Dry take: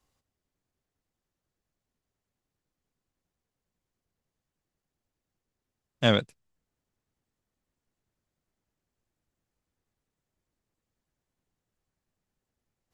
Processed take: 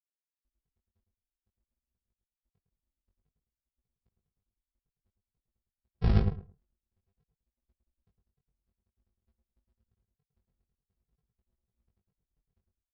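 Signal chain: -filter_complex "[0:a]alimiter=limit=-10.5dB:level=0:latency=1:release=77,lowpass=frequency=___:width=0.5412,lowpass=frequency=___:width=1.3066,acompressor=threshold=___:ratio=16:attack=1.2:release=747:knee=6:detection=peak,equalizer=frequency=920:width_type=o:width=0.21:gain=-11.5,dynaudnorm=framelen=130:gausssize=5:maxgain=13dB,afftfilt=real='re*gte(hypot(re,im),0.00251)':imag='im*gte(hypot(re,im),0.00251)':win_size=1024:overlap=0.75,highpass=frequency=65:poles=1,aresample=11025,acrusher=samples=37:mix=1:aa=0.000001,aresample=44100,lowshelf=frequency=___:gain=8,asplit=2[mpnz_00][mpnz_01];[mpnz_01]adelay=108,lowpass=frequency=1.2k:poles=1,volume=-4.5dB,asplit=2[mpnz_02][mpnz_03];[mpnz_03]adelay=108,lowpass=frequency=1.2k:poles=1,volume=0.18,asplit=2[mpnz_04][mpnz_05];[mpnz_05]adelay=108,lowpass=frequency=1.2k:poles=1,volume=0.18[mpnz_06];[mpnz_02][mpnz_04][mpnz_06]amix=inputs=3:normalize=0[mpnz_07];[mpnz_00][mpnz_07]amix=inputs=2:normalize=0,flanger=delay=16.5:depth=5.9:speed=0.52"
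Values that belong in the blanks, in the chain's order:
2k, 2k, -30dB, 470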